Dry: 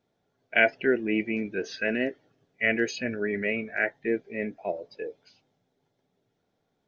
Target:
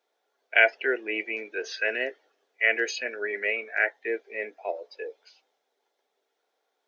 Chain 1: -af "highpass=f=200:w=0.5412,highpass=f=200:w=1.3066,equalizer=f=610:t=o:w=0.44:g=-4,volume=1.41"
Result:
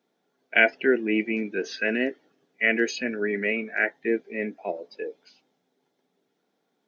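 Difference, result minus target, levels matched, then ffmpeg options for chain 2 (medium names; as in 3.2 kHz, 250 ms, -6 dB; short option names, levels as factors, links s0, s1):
250 Hz band +12.0 dB
-af "highpass=f=460:w=0.5412,highpass=f=460:w=1.3066,equalizer=f=610:t=o:w=0.44:g=-4,volume=1.41"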